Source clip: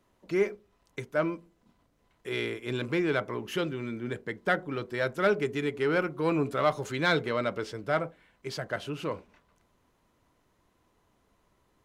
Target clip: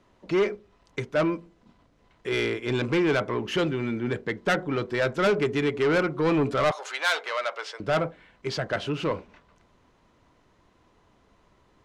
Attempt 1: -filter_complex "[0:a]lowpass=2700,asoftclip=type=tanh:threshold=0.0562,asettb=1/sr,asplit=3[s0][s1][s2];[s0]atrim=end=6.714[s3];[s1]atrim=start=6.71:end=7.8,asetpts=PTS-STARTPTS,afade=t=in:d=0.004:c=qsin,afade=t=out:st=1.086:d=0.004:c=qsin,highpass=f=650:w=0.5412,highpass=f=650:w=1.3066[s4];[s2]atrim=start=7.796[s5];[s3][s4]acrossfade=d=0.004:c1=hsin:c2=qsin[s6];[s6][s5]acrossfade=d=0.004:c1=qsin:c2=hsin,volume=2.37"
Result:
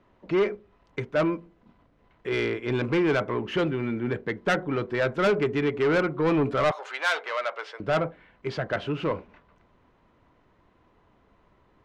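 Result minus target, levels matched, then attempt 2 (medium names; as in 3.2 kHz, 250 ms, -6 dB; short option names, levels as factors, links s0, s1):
8 kHz band -5.5 dB
-filter_complex "[0:a]lowpass=5900,asoftclip=type=tanh:threshold=0.0562,asettb=1/sr,asplit=3[s0][s1][s2];[s0]atrim=end=6.714[s3];[s1]atrim=start=6.71:end=7.8,asetpts=PTS-STARTPTS,afade=t=in:d=0.004:c=qsin,afade=t=out:st=1.086:d=0.004:c=qsin,highpass=f=650:w=0.5412,highpass=f=650:w=1.3066[s4];[s2]atrim=start=7.796[s5];[s3][s4]acrossfade=d=0.004:c1=hsin:c2=qsin[s6];[s6][s5]acrossfade=d=0.004:c1=qsin:c2=hsin,volume=2.37"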